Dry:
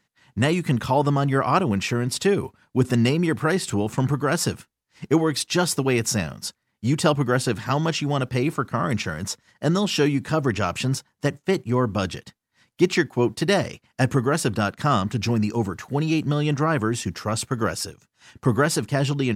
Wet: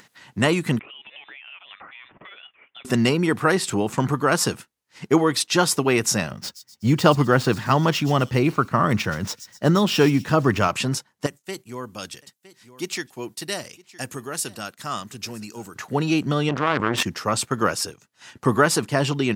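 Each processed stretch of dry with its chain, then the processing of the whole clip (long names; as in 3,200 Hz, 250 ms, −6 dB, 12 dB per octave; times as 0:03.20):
0:00.79–0:02.85: high-pass filter 1,400 Hz + downward compressor 16 to 1, threshold −41 dBFS + voice inversion scrambler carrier 3,800 Hz
0:06.31–0:10.68: running median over 5 samples + low-shelf EQ 140 Hz +10 dB + delay with a high-pass on its return 126 ms, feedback 42%, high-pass 5,600 Hz, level −7 dB
0:11.26–0:15.76: first-order pre-emphasis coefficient 0.8 + single-tap delay 963 ms −22.5 dB
0:16.49–0:17.03: low-pass filter 2,800 Hz + power curve on the samples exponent 2 + envelope flattener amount 100%
whole clip: dynamic equaliser 1,100 Hz, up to +4 dB, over −37 dBFS, Q 3; high-pass filter 210 Hz 6 dB per octave; upward compression, threshold −42 dBFS; level +3 dB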